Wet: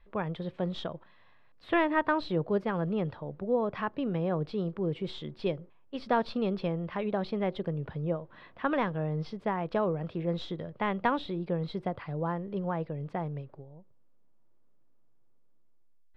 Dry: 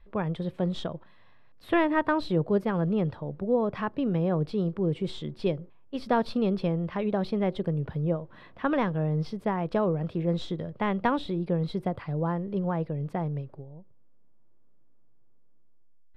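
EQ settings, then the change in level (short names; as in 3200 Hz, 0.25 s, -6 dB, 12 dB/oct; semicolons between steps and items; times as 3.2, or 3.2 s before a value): LPF 4600 Hz 12 dB/oct; low shelf 440 Hz -6 dB; 0.0 dB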